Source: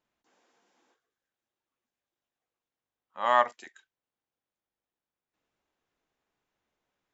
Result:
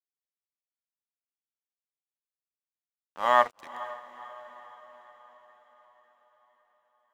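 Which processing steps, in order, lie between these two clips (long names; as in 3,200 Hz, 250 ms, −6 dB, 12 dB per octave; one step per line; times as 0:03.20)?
dead-zone distortion −46.5 dBFS
feedback delay with all-pass diffusion 485 ms, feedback 55%, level −16 dB
level +2 dB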